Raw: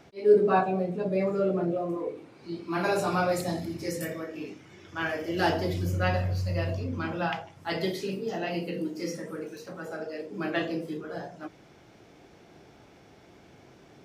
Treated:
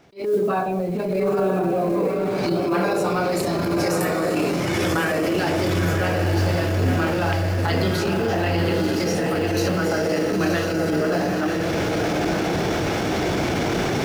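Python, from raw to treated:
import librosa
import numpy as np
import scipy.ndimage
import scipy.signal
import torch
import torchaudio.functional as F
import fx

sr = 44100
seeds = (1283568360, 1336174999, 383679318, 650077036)

y = fx.recorder_agc(x, sr, target_db=-15.0, rise_db_per_s=60.0, max_gain_db=30)
y = fx.mod_noise(y, sr, seeds[0], snr_db=31)
y = fx.echo_diffused(y, sr, ms=954, feedback_pct=62, wet_db=-3.0)
y = fx.transient(y, sr, attack_db=-11, sustain_db=3)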